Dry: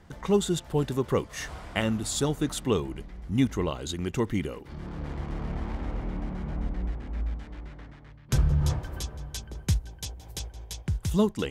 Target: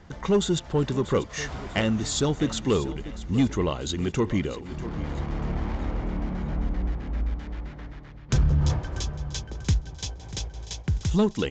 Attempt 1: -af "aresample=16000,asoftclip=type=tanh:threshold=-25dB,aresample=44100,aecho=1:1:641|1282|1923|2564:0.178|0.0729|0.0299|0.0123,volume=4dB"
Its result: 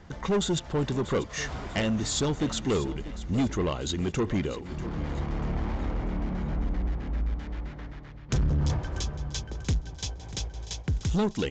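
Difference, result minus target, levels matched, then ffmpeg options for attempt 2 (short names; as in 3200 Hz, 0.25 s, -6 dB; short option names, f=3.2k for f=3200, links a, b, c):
soft clip: distortion +8 dB
-af "aresample=16000,asoftclip=type=tanh:threshold=-17.5dB,aresample=44100,aecho=1:1:641|1282|1923|2564:0.178|0.0729|0.0299|0.0123,volume=4dB"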